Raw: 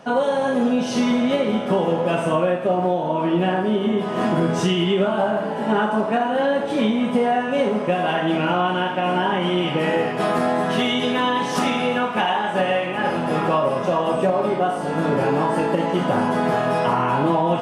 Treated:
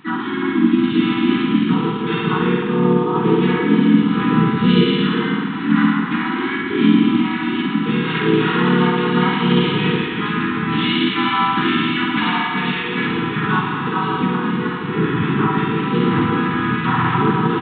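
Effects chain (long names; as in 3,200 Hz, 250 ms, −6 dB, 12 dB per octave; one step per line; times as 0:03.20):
parametric band 440 Hz −5.5 dB 0.25 octaves
reverb whose tail is shaped and stops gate 420 ms rising, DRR 10.5 dB
dynamic equaliser 170 Hz, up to +5 dB, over −33 dBFS, Q 1.7
brick-wall band-stop 370–900 Hz
flutter between parallel walls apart 9.5 metres, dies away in 1.2 s
pitch-shifted copies added −4 semitones −8 dB, +3 semitones −8 dB, +5 semitones −2 dB
downsampling to 8,000 Hz
level −1.5 dB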